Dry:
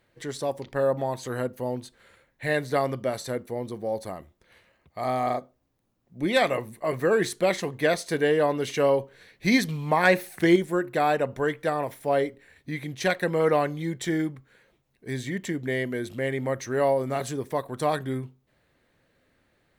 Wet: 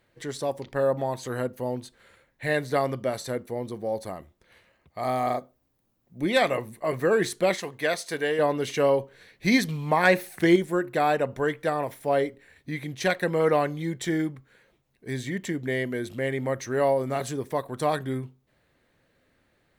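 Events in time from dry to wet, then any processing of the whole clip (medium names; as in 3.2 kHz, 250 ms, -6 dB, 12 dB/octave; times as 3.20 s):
5.04–6.24 s: treble shelf 12 kHz +9 dB
7.55–8.39 s: bass shelf 460 Hz -9 dB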